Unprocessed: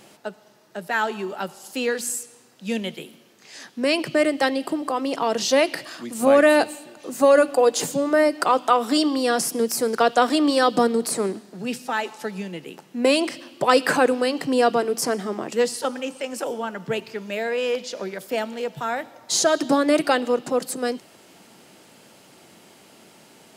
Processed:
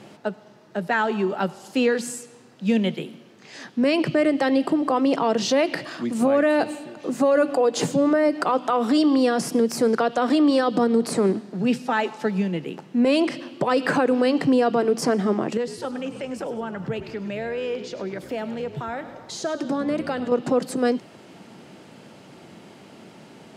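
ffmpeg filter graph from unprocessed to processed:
-filter_complex "[0:a]asettb=1/sr,asplit=3[a][b][c];[a]atrim=end=15.574[d];[b]atrim=start=15.57:end=20.32,asetpts=PTS-STARTPTS,afade=t=in:d=0.004:c=qsin,afade=t=out:st=4.746:d=0.004:c=qsin,acompressor=threshold=-37dB:ratio=2:attack=3.2:release=140:knee=1:detection=peak,asplit=6[e][f][g][h][i][j];[f]adelay=102,afreqshift=-62,volume=-13.5dB[k];[g]adelay=204,afreqshift=-124,volume=-19.9dB[l];[h]adelay=306,afreqshift=-186,volume=-26.3dB[m];[i]adelay=408,afreqshift=-248,volume=-32.6dB[n];[j]adelay=510,afreqshift=-310,volume=-39dB[o];[e][k][l][m][n][o]amix=inputs=6:normalize=0,atrim=end_sample=209475[p];[c]atrim=start=20.316[q];[d][p]acrossfade=d=0.004:c1=hsin:c2=qsin[r];[r][q]acrossfade=d=0.004:c1=qsin:c2=hsin,highpass=120,aemphasis=mode=reproduction:type=bsi,alimiter=limit=-15dB:level=0:latency=1:release=100,volume=3.5dB"

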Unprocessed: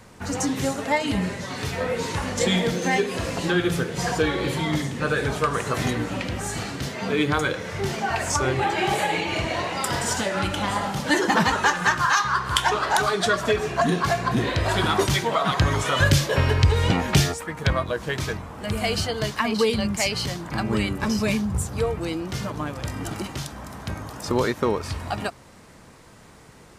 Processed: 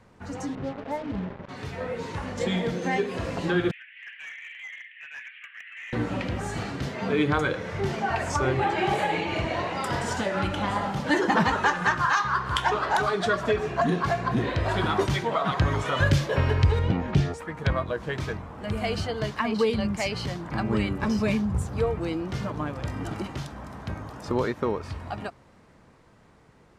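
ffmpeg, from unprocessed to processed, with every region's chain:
-filter_complex "[0:a]asettb=1/sr,asplit=3[a][b][c];[a]atrim=end=0.554[d];[b]atrim=start=0.55:end=1.49,asetpts=PTS-STARTPTS,afade=t=in:d=0.004:c=qsin,afade=t=out:st=0.936:d=0.004:c=qsin,lowpass=1.1k,acrusher=bits=4:mix=0:aa=0.5[e];[c]atrim=start=1.486[f];[d][e]acrossfade=d=0.004:c1=hsin:c2=qsin[g];[g][f]acrossfade=d=0.004:c1=qsin:c2=hsin,asettb=1/sr,asplit=3[h][i][j];[h]atrim=end=3.714[k];[i]atrim=start=3.71:end=5.93,asetpts=PTS-STARTPTS,afade=t=in:d=0.004:c=qsin,afade=t=out:st=2.216:d=0.004:c=qsin,asuperpass=centerf=2300:order=8:qfactor=1.9,volume=32.5dB,asoftclip=hard,volume=-32.5dB[l];[j]atrim=start=5.926[m];[k][l]acrossfade=d=0.004:c1=hsin:c2=qsin[n];[n][m]acrossfade=d=0.004:c1=qsin:c2=hsin,asettb=1/sr,asplit=3[o][p][q];[o]atrim=end=16.794[r];[p]atrim=start=16.79:end=17.34,asetpts=PTS-STARTPTS,afade=t=in:d=0.004:c=qsin,afade=t=out:st=0.546:d=0.004:c=qsin,acrossover=split=440|3000[s][t][u];[t]acompressor=threshold=-29dB:ratio=6:attack=3.2:release=140:knee=2.83:detection=peak[v];[s][v][u]amix=inputs=3:normalize=0,aemphasis=mode=reproduction:type=75kf[w];[q]atrim=start=17.336[x];[r][w]acrossfade=d=0.004:c1=hsin:c2=qsin[y];[y][x]acrossfade=d=0.004:c1=qsin:c2=hsin,lowpass=f=2.2k:p=1,dynaudnorm=f=670:g=9:m=7.5dB,volume=-7dB"

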